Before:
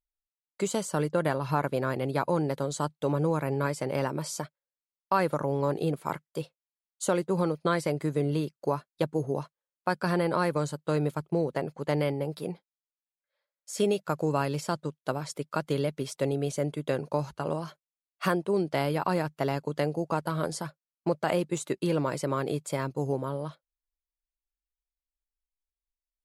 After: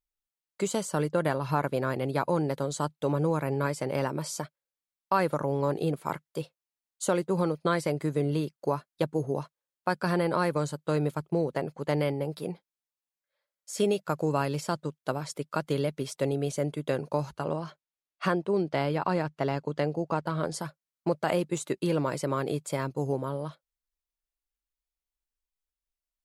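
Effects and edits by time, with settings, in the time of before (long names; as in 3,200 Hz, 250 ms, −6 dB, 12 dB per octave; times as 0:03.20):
0:17.45–0:20.54: high-frequency loss of the air 65 metres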